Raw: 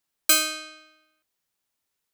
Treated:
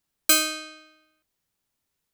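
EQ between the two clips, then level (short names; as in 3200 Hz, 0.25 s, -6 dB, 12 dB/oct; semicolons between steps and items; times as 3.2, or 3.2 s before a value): low shelf 280 Hz +10 dB; 0.0 dB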